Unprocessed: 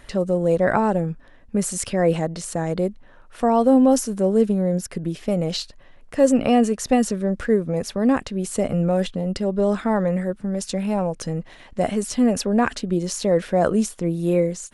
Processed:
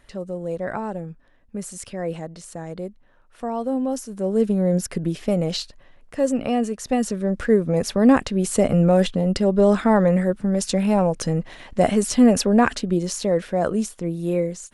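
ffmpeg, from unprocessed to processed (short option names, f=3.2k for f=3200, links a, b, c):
-af "volume=12dB,afade=t=in:st=4.07:d=0.76:silence=0.251189,afade=t=out:st=4.83:d=1.44:silence=0.398107,afade=t=in:st=6.83:d=1.1:silence=0.354813,afade=t=out:st=12.3:d=1.18:silence=0.446684"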